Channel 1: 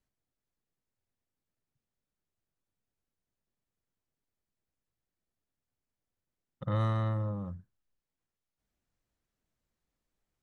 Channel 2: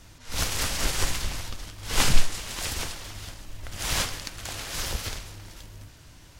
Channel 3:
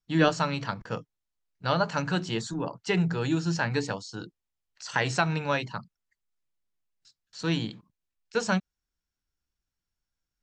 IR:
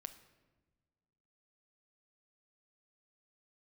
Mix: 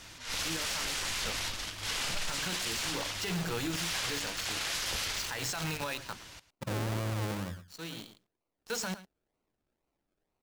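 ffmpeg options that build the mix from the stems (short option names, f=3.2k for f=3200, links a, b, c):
-filter_complex "[0:a]aecho=1:1:3:0.32,acrusher=samples=36:mix=1:aa=0.000001:lfo=1:lforange=21.6:lforate=2.1,volume=-2dB,asplit=3[a][b][c];[b]volume=-14dB[d];[1:a]equalizer=f=2.9k:t=o:w=3:g=7.5,volume=-7.5dB,asplit=2[e][f];[f]volume=-17dB[g];[2:a]highshelf=f=3k:g=9.5,alimiter=limit=-15dB:level=0:latency=1:release=147,acrusher=bits=6:dc=4:mix=0:aa=0.000001,adelay=350,volume=-11dB,asplit=2[h][i];[i]volume=-19dB[j];[c]apad=whole_len=475305[k];[h][k]sidechaincompress=threshold=-46dB:ratio=6:attack=16:release=1380[l];[d][g][j]amix=inputs=3:normalize=0,aecho=0:1:109:1[m];[a][e][l][m]amix=inputs=4:normalize=0,lowshelf=f=120:g=-9.5,acontrast=83,alimiter=level_in=1dB:limit=-24dB:level=0:latency=1:release=12,volume=-1dB"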